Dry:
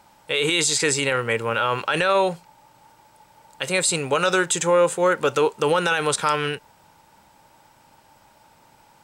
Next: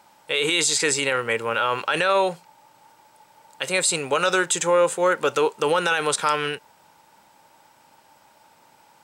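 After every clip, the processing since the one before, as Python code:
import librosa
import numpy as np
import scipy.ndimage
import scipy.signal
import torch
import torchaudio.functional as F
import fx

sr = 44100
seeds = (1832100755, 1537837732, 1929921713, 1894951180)

y = fx.highpass(x, sr, hz=260.0, slope=6)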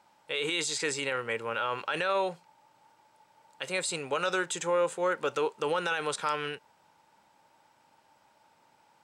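y = fx.high_shelf(x, sr, hz=10000.0, db=-12.0)
y = F.gain(torch.from_numpy(y), -8.5).numpy()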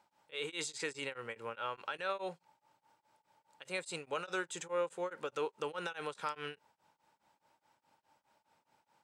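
y = x * np.abs(np.cos(np.pi * 4.8 * np.arange(len(x)) / sr))
y = F.gain(torch.from_numpy(y), -6.5).numpy()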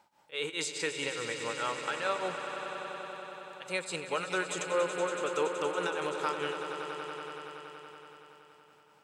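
y = fx.echo_swell(x, sr, ms=94, loudest=5, wet_db=-11.5)
y = F.gain(torch.from_numpy(y), 5.0).numpy()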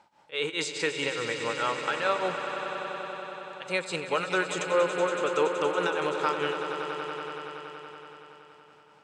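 y = fx.air_absorb(x, sr, metres=62.0)
y = F.gain(torch.from_numpy(y), 5.5).numpy()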